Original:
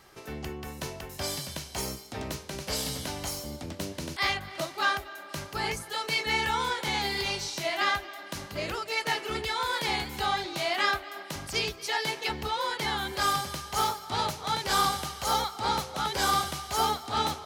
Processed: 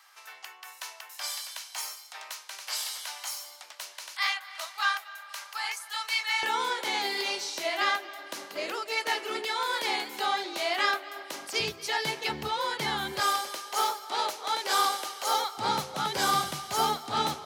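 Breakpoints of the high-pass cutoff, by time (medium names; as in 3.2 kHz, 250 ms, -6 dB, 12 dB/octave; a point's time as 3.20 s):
high-pass 24 dB/octave
900 Hz
from 6.43 s 290 Hz
from 11.60 s 95 Hz
from 13.20 s 350 Hz
from 15.58 s 110 Hz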